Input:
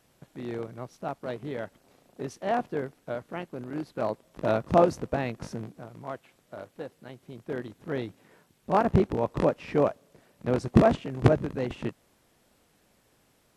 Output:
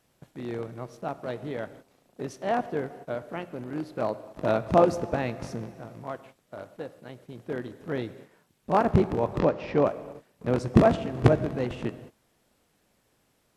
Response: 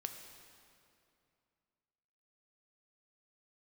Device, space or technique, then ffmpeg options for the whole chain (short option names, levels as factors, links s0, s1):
keyed gated reverb: -filter_complex "[0:a]asettb=1/sr,asplit=3[s0][s1][s2];[s0]atrim=end=9.394[s3];[s1]atrim=start=9.39:end=9.86,asetpts=PTS-STARTPTS,afade=t=in:d=0.004:c=qsin,afade=t=out:st=0.466:d=0.004:c=qsin,lowpass=f=6000:w=0.5412,lowpass=f=6000:w=1.3066[s4];[s2]atrim=start=9.856[s5];[s3][s4]acrossfade=d=0.004:c1=hsin:c2=qsin[s6];[s6][s5]acrossfade=d=0.004:c1=qsin:c2=hsin,asplit=3[s7][s8][s9];[1:a]atrim=start_sample=2205[s10];[s8][s10]afir=irnorm=-1:irlink=0[s11];[s9]apad=whole_len=598180[s12];[s11][s12]sidechaingate=range=0.0224:threshold=0.00224:ratio=16:detection=peak,volume=0.891[s13];[s7][s13]amix=inputs=2:normalize=0,volume=0.668"